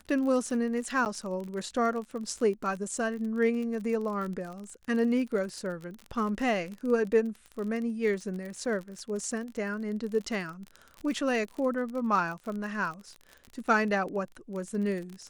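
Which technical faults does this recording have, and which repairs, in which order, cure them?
crackle 38 per s -35 dBFS
1.05–1.06 s: dropout 9.2 ms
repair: de-click; interpolate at 1.05 s, 9.2 ms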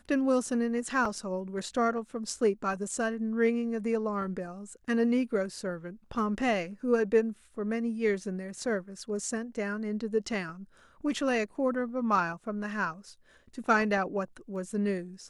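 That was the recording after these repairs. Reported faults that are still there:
nothing left

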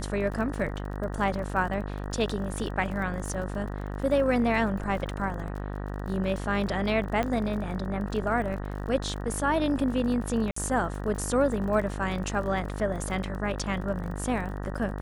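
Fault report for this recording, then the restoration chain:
buzz 50 Hz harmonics 38 -34 dBFS
crackle 40 per s -36 dBFS
7.23 s: pop -16 dBFS
10.51–10.56 s: dropout 54 ms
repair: de-click; de-hum 50 Hz, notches 38; interpolate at 10.51 s, 54 ms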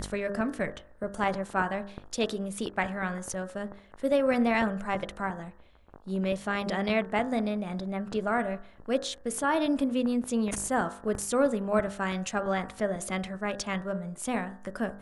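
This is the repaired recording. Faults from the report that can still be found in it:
nothing left

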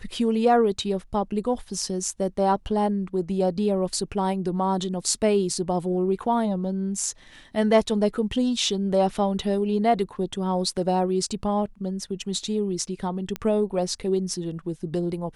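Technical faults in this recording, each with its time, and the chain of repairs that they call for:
13.36 s: pop -15 dBFS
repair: de-click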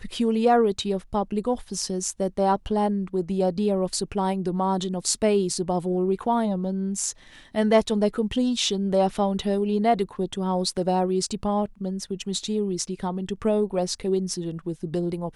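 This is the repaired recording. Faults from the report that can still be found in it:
nothing left

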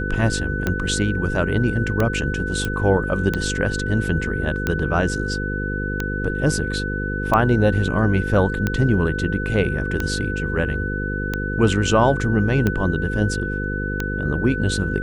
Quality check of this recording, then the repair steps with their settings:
buzz 50 Hz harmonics 10 -26 dBFS
tick 45 rpm -8 dBFS
whine 1.5 kHz -27 dBFS
2.65 s: pop -11 dBFS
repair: de-click; band-stop 1.5 kHz, Q 30; de-hum 50 Hz, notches 10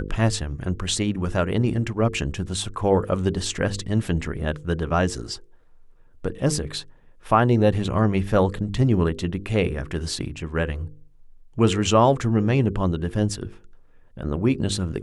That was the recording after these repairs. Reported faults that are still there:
nothing left

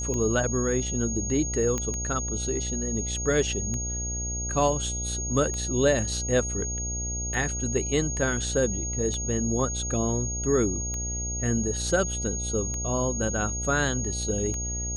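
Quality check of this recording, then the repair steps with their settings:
buzz 60 Hz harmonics 14 -33 dBFS
tick 33 1/3 rpm -20 dBFS
whine 6.6 kHz -31 dBFS
1.78 s: pop -15 dBFS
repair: de-click; de-hum 60 Hz, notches 14; band-stop 6.6 kHz, Q 30

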